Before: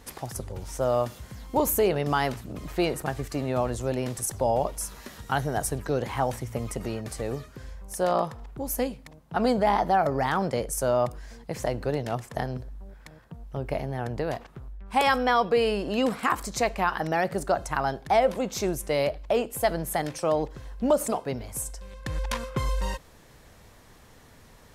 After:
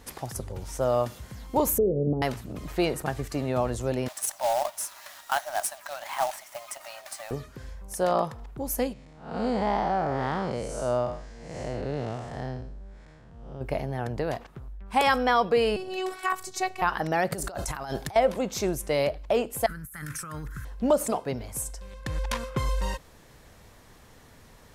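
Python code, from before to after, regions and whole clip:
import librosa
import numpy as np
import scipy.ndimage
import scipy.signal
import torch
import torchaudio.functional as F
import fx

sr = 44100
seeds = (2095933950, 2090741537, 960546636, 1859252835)

y = fx.chain(x, sr, fx.ellip_lowpass(hz=520.0, order=4, stop_db=80),
    fx.band_squash(depth_pct=100), at=(1.78, 2.22))
y = fx.chain(y, sr, fx.brickwall_highpass(low_hz=560.0),
    fx.quant_companded(bits=4), at=(4.08, 7.31))
y = fx.chain(y, sr, fx.spec_blur(span_ms=200.0),
    fx.lowpass(hz=8400.0, slope=24), at=(8.93, 13.61))
y = fx.chain(y, sr, fx.low_shelf(hz=390.0, db=-5.5),
    fx.robotise(hz=375.0), at=(15.76, 16.82))
y = fx.chain(y, sr, fx.high_shelf(hz=4100.0, db=11.0),
    fx.over_compress(threshold_db=-34.0, ratio=-1.0), at=(17.32, 18.16))
y = fx.chain(y, sr, fx.curve_eq(hz=(170.0, 720.0, 1400.0, 2900.0, 4400.0, 11000.0), db=(0, -26, 9, -9, -9, 10)),
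    fx.over_compress(threshold_db=-38.0, ratio=-1.0), at=(19.66, 20.65))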